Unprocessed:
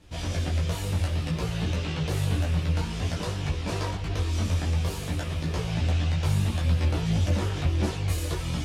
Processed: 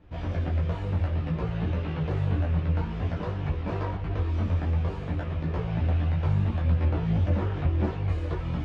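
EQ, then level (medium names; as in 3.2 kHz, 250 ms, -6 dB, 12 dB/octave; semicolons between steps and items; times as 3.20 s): low-pass 1.7 kHz 12 dB/octave; 0.0 dB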